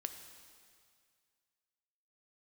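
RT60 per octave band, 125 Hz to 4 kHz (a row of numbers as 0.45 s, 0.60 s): 2.2 s, 2.0 s, 2.1 s, 2.1 s, 2.1 s, 2.1 s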